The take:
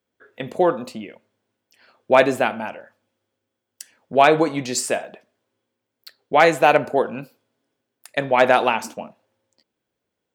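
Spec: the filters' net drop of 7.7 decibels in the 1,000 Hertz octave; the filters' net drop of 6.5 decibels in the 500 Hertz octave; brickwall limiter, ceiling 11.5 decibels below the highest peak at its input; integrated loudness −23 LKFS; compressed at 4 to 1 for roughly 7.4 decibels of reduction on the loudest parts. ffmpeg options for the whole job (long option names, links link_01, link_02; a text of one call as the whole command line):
ffmpeg -i in.wav -af "equalizer=frequency=500:width_type=o:gain=-5,equalizer=frequency=1000:width_type=o:gain=-9,acompressor=threshold=-23dB:ratio=4,volume=10.5dB,alimiter=limit=-10.5dB:level=0:latency=1" out.wav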